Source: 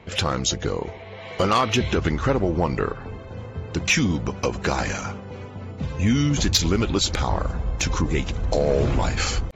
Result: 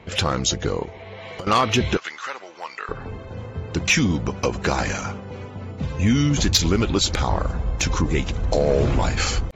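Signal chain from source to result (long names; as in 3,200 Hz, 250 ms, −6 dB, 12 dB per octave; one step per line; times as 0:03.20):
0:00.84–0:01.47: downward compressor 16 to 1, threshold −33 dBFS, peak gain reduction 17 dB
0:01.97–0:02.89: high-pass filter 1,400 Hz 12 dB per octave
level +1.5 dB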